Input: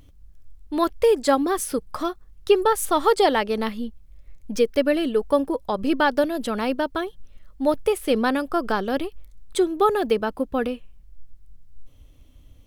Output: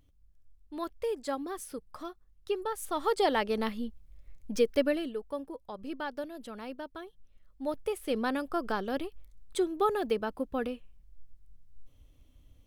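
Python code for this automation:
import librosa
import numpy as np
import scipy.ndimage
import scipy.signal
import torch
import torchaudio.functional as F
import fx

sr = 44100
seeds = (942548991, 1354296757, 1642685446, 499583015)

y = fx.gain(x, sr, db=fx.line((2.7, -15.0), (3.44, -6.0), (4.83, -6.0), (5.24, -17.0), (6.99, -17.0), (8.4, -8.5)))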